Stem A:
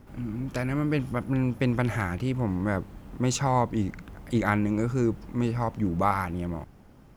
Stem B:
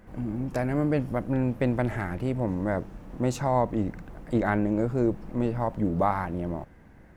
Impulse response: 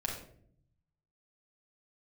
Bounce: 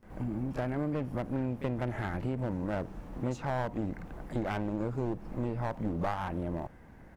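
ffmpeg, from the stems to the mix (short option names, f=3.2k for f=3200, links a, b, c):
-filter_complex "[0:a]volume=-16dB[a];[1:a]acrossover=split=3200[b][c];[c]acompressor=threshold=-60dB:ratio=4:attack=1:release=60[d];[b][d]amix=inputs=2:normalize=0,equalizer=f=860:t=o:w=1:g=2.5,aeval=exprs='clip(val(0),-1,0.0501)':c=same,volume=-1,adelay=29,volume=-1dB[e];[a][e]amix=inputs=2:normalize=0,acompressor=threshold=-31dB:ratio=2.5"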